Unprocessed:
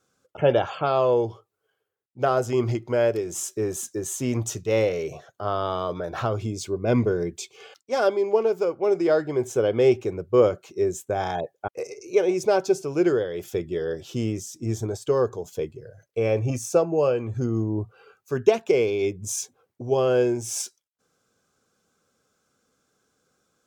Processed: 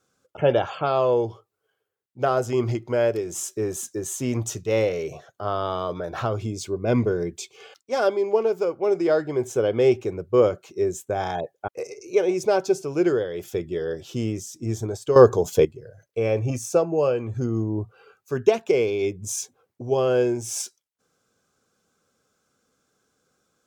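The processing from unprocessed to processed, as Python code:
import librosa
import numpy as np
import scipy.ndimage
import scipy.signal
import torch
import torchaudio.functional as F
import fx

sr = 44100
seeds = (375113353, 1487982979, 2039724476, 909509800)

y = fx.edit(x, sr, fx.clip_gain(start_s=15.16, length_s=0.49, db=11.0), tone=tone)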